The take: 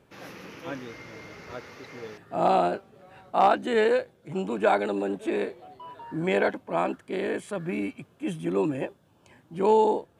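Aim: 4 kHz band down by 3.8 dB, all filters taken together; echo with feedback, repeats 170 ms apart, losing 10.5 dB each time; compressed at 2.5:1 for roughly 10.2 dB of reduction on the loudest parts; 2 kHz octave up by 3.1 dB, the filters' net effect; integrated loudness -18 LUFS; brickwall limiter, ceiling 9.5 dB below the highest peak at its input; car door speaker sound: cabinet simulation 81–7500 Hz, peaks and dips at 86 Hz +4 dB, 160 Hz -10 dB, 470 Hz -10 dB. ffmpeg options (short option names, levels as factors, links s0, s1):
-af "equalizer=f=2000:t=o:g=6,equalizer=f=4000:t=o:g=-8.5,acompressor=threshold=0.0282:ratio=2.5,alimiter=level_in=1.5:limit=0.0631:level=0:latency=1,volume=0.668,highpass=81,equalizer=f=86:t=q:w=4:g=4,equalizer=f=160:t=q:w=4:g=-10,equalizer=f=470:t=q:w=4:g=-10,lowpass=f=7500:w=0.5412,lowpass=f=7500:w=1.3066,aecho=1:1:170|340|510:0.299|0.0896|0.0269,volume=13.3"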